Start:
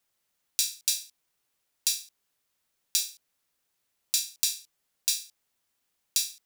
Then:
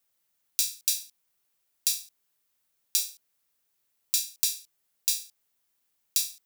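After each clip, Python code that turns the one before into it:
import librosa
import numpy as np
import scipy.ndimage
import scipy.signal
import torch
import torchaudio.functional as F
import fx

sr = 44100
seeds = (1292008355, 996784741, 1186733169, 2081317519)

y = fx.high_shelf(x, sr, hz=11000.0, db=8.5)
y = y * librosa.db_to_amplitude(-2.5)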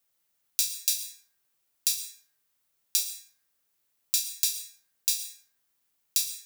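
y = fx.rev_plate(x, sr, seeds[0], rt60_s=1.0, hf_ratio=0.35, predelay_ms=100, drr_db=9.0)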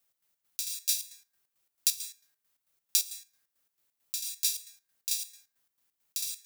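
y = fx.chopper(x, sr, hz=4.5, depth_pct=65, duty_pct=55)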